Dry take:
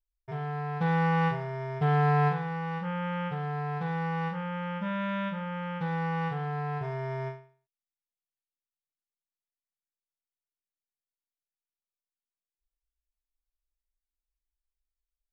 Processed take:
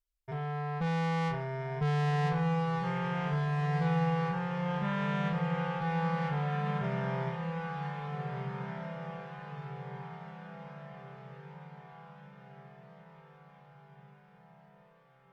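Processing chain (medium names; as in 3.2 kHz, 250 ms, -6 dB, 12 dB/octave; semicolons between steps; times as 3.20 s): valve stage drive 28 dB, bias 0.25; echo that smears into a reverb 1639 ms, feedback 53%, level -5 dB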